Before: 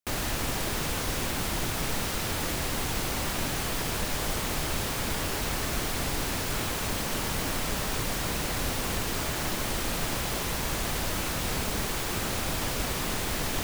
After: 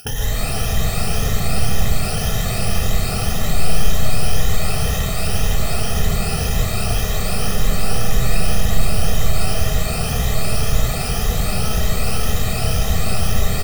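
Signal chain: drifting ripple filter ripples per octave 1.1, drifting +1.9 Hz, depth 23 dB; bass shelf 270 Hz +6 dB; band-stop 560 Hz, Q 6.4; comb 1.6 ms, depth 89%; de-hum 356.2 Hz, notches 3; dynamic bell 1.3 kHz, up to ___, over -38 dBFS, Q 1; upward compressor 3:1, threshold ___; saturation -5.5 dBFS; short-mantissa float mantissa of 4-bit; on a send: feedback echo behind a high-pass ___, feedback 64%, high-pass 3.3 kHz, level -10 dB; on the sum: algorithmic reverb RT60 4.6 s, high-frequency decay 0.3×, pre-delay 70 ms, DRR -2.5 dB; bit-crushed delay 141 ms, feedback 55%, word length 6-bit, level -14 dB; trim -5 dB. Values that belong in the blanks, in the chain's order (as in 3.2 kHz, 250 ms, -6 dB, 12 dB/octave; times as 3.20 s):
-5 dB, -15 dBFS, 160 ms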